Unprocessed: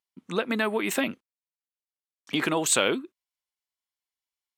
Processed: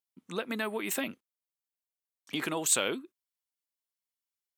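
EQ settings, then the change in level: treble shelf 7.5 kHz +10.5 dB; -7.5 dB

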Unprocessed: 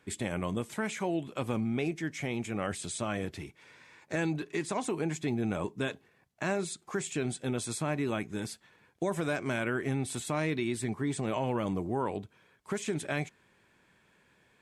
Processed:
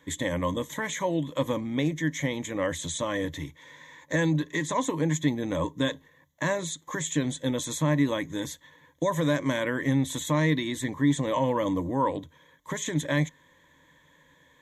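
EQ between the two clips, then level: rippled EQ curve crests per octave 1.1, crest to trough 15 dB; +3.0 dB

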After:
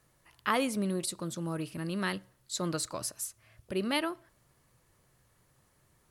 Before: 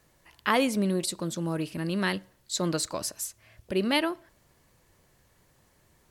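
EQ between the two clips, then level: graphic EQ with 31 bands 125 Hz +7 dB, 1.25 kHz +5 dB, 10 kHz +6 dB; -5.5 dB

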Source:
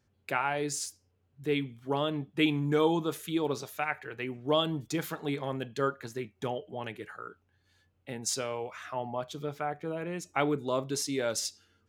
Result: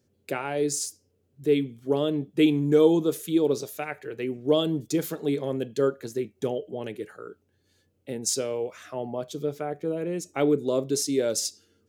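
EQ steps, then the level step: high-pass 160 Hz 6 dB/octave; tone controls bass -1 dB, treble +9 dB; resonant low shelf 650 Hz +9.5 dB, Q 1.5; -2.5 dB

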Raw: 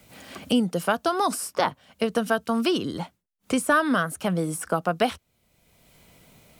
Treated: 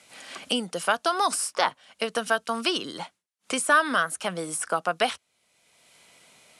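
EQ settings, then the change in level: high-pass 1.1 kHz 6 dB/octave; steep low-pass 11 kHz 48 dB/octave; +4.0 dB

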